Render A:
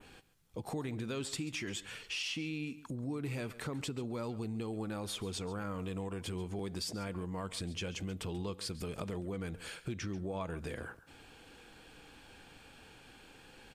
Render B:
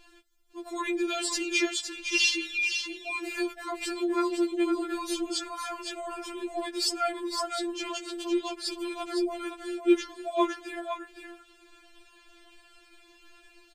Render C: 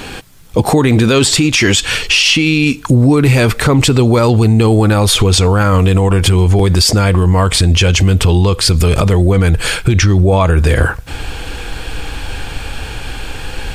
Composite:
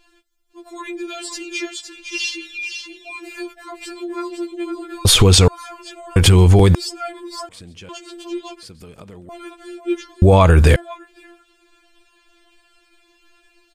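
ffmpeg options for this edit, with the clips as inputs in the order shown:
-filter_complex "[2:a]asplit=3[a][b][c];[0:a]asplit=2[d][e];[1:a]asplit=6[f][g][h][i][j][k];[f]atrim=end=5.052[l];[a]atrim=start=5.048:end=5.482[m];[g]atrim=start=5.478:end=6.162[n];[b]atrim=start=6.158:end=6.752[o];[h]atrim=start=6.748:end=7.492[p];[d]atrim=start=7.488:end=7.892[q];[i]atrim=start=7.888:end=8.632[r];[e]atrim=start=8.628:end=9.292[s];[j]atrim=start=9.288:end=10.222[t];[c]atrim=start=10.218:end=10.762[u];[k]atrim=start=10.758[v];[l][m]acrossfade=d=0.004:c1=hsin:c2=hsin[w];[w][n]acrossfade=d=0.004:c1=hsin:c2=hsin[x];[x][o]acrossfade=d=0.004:c1=hsin:c2=hsin[y];[y][p]acrossfade=d=0.004:c1=hsin:c2=hsin[z];[z][q]acrossfade=d=0.004:c1=hsin:c2=hsin[aa];[aa][r]acrossfade=d=0.004:c1=hsin:c2=hsin[ab];[ab][s]acrossfade=d=0.004:c1=hsin:c2=hsin[ac];[ac][t]acrossfade=d=0.004:c1=hsin:c2=hsin[ad];[ad][u]acrossfade=d=0.004:c1=hsin:c2=hsin[ae];[ae][v]acrossfade=d=0.004:c1=hsin:c2=hsin"

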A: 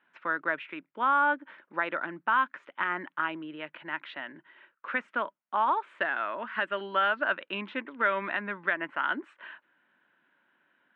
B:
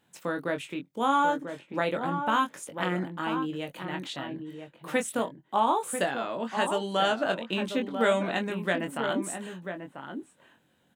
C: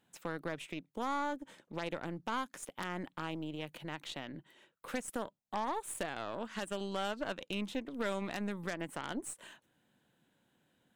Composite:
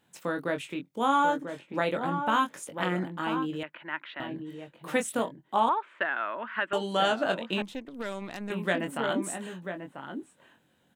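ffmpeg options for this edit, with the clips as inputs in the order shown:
-filter_complex "[0:a]asplit=2[a][b];[1:a]asplit=4[c][d][e][f];[c]atrim=end=3.632[g];[a]atrim=start=3.628:end=4.202[h];[d]atrim=start=4.198:end=5.692[i];[b]atrim=start=5.688:end=6.732[j];[e]atrim=start=6.728:end=7.622[k];[2:a]atrim=start=7.618:end=8.502[l];[f]atrim=start=8.498[m];[g][h]acrossfade=d=0.004:c1=hsin:c2=hsin[n];[n][i]acrossfade=d=0.004:c1=hsin:c2=hsin[o];[o][j]acrossfade=d=0.004:c1=hsin:c2=hsin[p];[p][k]acrossfade=d=0.004:c1=hsin:c2=hsin[q];[q][l]acrossfade=d=0.004:c1=hsin:c2=hsin[r];[r][m]acrossfade=d=0.004:c1=hsin:c2=hsin"

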